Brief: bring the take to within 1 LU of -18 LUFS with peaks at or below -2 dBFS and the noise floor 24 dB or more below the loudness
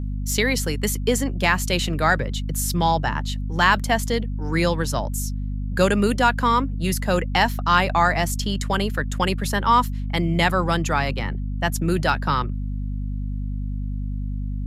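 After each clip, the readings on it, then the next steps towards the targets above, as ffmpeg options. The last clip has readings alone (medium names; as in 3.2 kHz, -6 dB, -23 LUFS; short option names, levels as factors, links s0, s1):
hum 50 Hz; highest harmonic 250 Hz; hum level -24 dBFS; loudness -22.5 LUFS; peak level -4.0 dBFS; loudness target -18.0 LUFS
-> -af "bandreject=f=50:t=h:w=4,bandreject=f=100:t=h:w=4,bandreject=f=150:t=h:w=4,bandreject=f=200:t=h:w=4,bandreject=f=250:t=h:w=4"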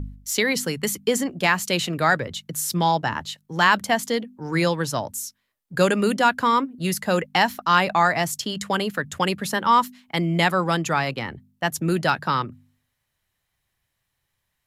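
hum not found; loudness -22.5 LUFS; peak level -5.0 dBFS; loudness target -18.0 LUFS
-> -af "volume=1.68,alimiter=limit=0.794:level=0:latency=1"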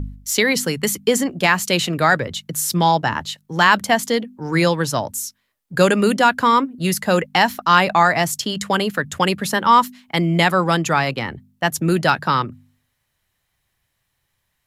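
loudness -18.0 LUFS; peak level -2.0 dBFS; noise floor -72 dBFS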